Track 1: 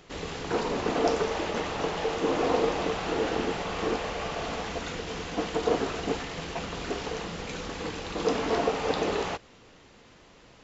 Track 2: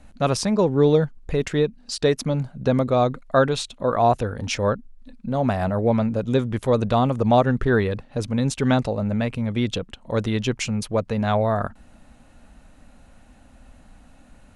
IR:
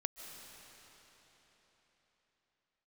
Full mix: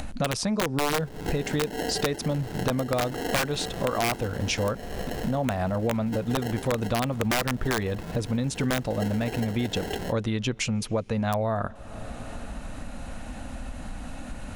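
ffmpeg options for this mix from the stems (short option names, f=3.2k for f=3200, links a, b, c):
-filter_complex "[0:a]afwtdn=0.0141,equalizer=f=1.5k:w=0.4:g=-12.5,acrusher=samples=37:mix=1:aa=0.000001,adelay=750,volume=0.5dB,asplit=2[a][b];[b]volume=-21dB[c];[1:a]bandreject=f=410:w=13,volume=0.5dB,asplit=2[d][e];[e]volume=-21.5dB[f];[2:a]atrim=start_sample=2205[g];[c][f]amix=inputs=2:normalize=0[h];[h][g]afir=irnorm=-1:irlink=0[i];[a][d][i]amix=inputs=3:normalize=0,acompressor=mode=upward:threshold=-23dB:ratio=2.5,aeval=exprs='(mod(2.82*val(0)+1,2)-1)/2.82':c=same,acompressor=threshold=-23dB:ratio=6"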